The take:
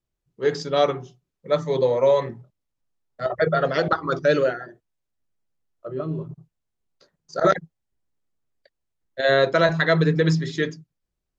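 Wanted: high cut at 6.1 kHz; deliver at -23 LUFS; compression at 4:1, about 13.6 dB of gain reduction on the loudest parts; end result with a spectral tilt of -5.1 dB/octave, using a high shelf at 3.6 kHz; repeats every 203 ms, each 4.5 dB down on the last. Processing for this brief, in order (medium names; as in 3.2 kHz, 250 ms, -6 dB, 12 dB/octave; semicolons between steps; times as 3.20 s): low-pass 6.1 kHz; treble shelf 3.6 kHz -5 dB; compression 4:1, threshold -31 dBFS; feedback delay 203 ms, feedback 60%, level -4.5 dB; trim +10.5 dB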